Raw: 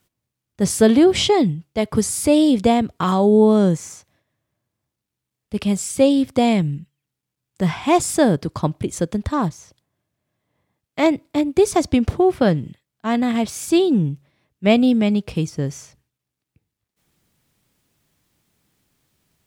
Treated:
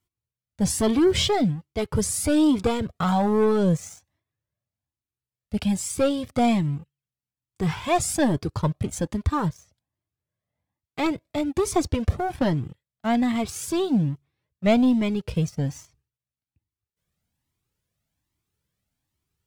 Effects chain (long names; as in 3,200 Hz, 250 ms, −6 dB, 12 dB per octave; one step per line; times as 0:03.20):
parametric band 77 Hz +5.5 dB 1.5 octaves
leveller curve on the samples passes 2
flanger whose copies keep moving one way rising 1.2 Hz
level −6 dB